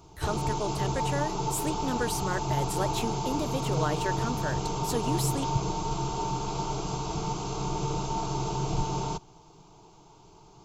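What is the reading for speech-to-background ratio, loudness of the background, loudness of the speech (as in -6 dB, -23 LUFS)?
-2.5 dB, -31.0 LUFS, -33.5 LUFS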